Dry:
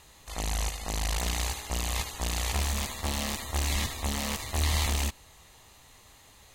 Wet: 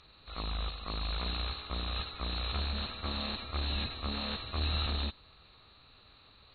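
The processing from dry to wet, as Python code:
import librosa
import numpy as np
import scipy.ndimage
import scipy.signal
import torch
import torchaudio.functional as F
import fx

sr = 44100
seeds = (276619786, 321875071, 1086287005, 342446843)

y = fx.freq_compress(x, sr, knee_hz=2700.0, ratio=4.0)
y = fx.formant_shift(y, sr, semitones=5)
y = F.gain(torch.from_numpy(y), -6.0).numpy()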